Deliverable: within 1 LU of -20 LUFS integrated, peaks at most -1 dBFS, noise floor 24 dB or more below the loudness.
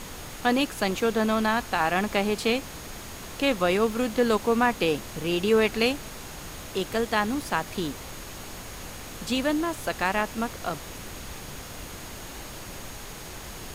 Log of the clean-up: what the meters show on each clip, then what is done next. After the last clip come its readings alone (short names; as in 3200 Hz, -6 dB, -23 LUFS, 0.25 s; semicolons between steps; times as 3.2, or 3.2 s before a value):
steady tone 6600 Hz; tone level -51 dBFS; noise floor -40 dBFS; noise floor target -50 dBFS; loudness -26.0 LUFS; peak -9.5 dBFS; loudness target -20.0 LUFS
-> notch 6600 Hz, Q 30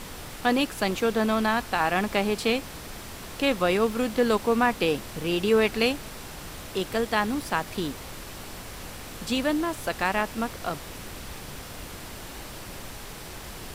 steady tone none; noise floor -41 dBFS; noise floor target -50 dBFS
-> noise print and reduce 9 dB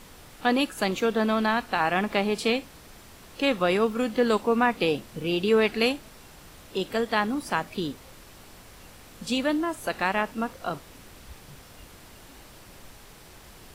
noise floor -49 dBFS; noise floor target -50 dBFS
-> noise print and reduce 6 dB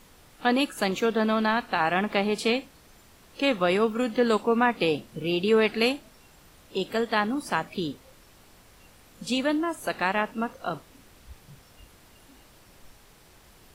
noise floor -55 dBFS; loudness -26.0 LUFS; peak -9.5 dBFS; loudness target -20.0 LUFS
-> gain +6 dB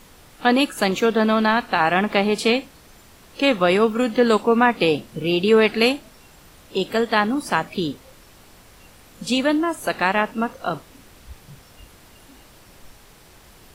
loudness -20.0 LUFS; peak -3.5 dBFS; noise floor -49 dBFS